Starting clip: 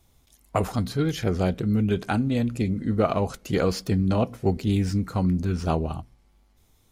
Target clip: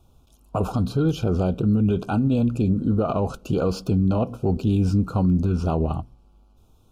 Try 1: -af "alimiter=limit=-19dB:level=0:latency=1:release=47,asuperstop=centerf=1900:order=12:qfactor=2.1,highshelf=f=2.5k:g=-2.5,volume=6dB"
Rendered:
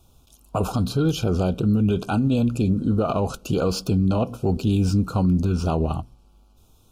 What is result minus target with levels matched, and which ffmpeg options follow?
4000 Hz band +6.0 dB
-af "alimiter=limit=-19dB:level=0:latency=1:release=47,asuperstop=centerf=1900:order=12:qfactor=2.1,highshelf=f=2.5k:g=-11.5,volume=6dB"

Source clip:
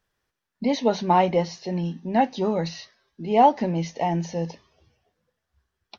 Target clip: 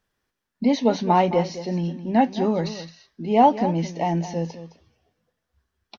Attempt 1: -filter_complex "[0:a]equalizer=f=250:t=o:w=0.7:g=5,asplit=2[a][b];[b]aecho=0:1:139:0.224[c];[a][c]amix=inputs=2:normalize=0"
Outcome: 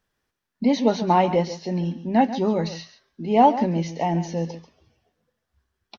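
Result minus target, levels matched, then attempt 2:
echo 75 ms early
-filter_complex "[0:a]equalizer=f=250:t=o:w=0.7:g=5,asplit=2[a][b];[b]aecho=0:1:214:0.224[c];[a][c]amix=inputs=2:normalize=0"

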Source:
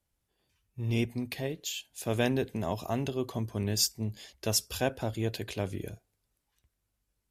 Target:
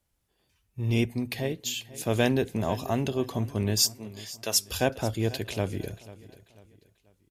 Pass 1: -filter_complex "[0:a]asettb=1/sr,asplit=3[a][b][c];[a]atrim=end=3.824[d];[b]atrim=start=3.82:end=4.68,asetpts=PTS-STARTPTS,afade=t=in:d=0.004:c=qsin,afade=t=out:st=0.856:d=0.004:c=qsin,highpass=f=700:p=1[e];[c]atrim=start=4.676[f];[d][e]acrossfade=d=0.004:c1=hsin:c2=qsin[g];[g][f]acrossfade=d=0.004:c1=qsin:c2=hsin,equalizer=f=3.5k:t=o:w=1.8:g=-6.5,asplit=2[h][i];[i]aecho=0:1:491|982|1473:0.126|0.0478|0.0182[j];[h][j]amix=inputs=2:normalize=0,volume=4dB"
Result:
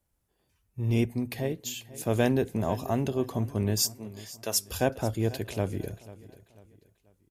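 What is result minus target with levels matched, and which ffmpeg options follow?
4000 Hz band -4.0 dB
-filter_complex "[0:a]asettb=1/sr,asplit=3[a][b][c];[a]atrim=end=3.824[d];[b]atrim=start=3.82:end=4.68,asetpts=PTS-STARTPTS,afade=t=in:d=0.004:c=qsin,afade=t=out:st=0.856:d=0.004:c=qsin,highpass=f=700:p=1[e];[c]atrim=start=4.676[f];[d][e]acrossfade=d=0.004:c1=hsin:c2=qsin[g];[g][f]acrossfade=d=0.004:c1=qsin:c2=hsin,asplit=2[h][i];[i]aecho=0:1:491|982|1473:0.126|0.0478|0.0182[j];[h][j]amix=inputs=2:normalize=0,volume=4dB"

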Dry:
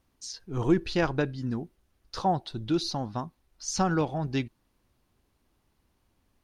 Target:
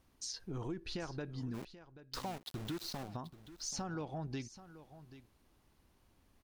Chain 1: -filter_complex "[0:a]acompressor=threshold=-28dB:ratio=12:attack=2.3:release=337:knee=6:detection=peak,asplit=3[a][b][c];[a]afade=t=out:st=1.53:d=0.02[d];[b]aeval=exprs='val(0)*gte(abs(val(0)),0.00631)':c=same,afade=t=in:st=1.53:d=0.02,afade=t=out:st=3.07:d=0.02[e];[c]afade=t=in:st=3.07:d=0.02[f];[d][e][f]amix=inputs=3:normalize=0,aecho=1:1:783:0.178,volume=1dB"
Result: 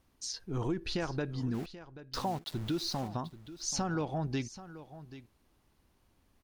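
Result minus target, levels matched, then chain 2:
compressor: peak gain reduction -8 dB
-filter_complex "[0:a]acompressor=threshold=-36.5dB:ratio=12:attack=2.3:release=337:knee=6:detection=peak,asplit=3[a][b][c];[a]afade=t=out:st=1.53:d=0.02[d];[b]aeval=exprs='val(0)*gte(abs(val(0)),0.00631)':c=same,afade=t=in:st=1.53:d=0.02,afade=t=out:st=3.07:d=0.02[e];[c]afade=t=in:st=3.07:d=0.02[f];[d][e][f]amix=inputs=3:normalize=0,aecho=1:1:783:0.178,volume=1dB"

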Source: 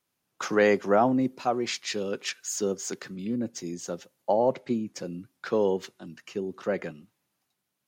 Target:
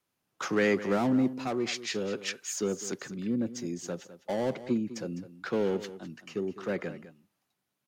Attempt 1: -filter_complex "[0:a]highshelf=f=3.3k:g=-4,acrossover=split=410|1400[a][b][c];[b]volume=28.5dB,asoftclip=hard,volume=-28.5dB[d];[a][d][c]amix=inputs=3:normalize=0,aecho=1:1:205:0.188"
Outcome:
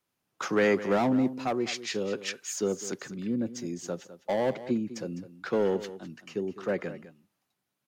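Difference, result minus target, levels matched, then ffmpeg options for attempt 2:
overloaded stage: distortion -5 dB
-filter_complex "[0:a]highshelf=f=3.3k:g=-4,acrossover=split=410|1400[a][b][c];[b]volume=36.5dB,asoftclip=hard,volume=-36.5dB[d];[a][d][c]amix=inputs=3:normalize=0,aecho=1:1:205:0.188"

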